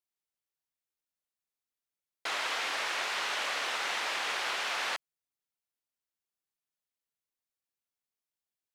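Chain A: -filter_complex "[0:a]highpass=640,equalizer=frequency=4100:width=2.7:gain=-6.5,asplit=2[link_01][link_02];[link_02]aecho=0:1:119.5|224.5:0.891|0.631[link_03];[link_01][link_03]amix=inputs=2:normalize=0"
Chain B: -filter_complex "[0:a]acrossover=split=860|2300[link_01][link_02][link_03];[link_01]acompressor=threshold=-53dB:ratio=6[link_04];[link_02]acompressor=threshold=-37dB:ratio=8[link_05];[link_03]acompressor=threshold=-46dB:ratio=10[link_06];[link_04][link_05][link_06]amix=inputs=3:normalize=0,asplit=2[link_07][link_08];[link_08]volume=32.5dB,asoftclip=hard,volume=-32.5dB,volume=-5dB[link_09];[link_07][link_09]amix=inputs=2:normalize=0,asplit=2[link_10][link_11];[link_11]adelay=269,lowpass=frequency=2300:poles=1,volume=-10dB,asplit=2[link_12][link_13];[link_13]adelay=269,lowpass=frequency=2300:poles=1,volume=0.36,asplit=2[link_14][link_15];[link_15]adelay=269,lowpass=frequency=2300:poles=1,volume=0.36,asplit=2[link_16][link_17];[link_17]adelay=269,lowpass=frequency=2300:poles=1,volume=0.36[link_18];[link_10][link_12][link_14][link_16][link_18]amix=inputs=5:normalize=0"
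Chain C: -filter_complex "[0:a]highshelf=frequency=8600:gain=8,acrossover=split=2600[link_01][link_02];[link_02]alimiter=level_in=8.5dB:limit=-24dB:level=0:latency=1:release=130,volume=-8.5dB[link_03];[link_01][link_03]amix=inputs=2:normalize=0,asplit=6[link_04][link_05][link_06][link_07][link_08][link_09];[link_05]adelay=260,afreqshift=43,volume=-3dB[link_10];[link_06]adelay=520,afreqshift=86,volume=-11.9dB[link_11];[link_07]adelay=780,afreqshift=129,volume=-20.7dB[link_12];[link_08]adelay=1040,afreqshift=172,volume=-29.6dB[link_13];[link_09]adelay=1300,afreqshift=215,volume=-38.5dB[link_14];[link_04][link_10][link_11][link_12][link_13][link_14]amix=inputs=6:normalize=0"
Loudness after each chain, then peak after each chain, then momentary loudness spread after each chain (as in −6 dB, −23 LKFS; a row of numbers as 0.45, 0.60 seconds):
−30.0, −33.5, −31.0 LKFS; −18.0, −23.5, −19.5 dBFS; 7, 8, 10 LU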